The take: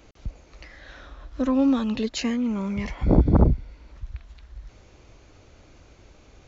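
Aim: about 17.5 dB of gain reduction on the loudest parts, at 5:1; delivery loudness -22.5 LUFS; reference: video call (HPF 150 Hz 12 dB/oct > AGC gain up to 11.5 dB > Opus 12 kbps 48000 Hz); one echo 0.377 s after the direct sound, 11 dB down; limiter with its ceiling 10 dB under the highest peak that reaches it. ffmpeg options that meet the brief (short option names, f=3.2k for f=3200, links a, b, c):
-af "acompressor=threshold=-32dB:ratio=5,alimiter=level_in=7dB:limit=-24dB:level=0:latency=1,volume=-7dB,highpass=150,aecho=1:1:377:0.282,dynaudnorm=m=11.5dB,volume=18.5dB" -ar 48000 -c:a libopus -b:a 12k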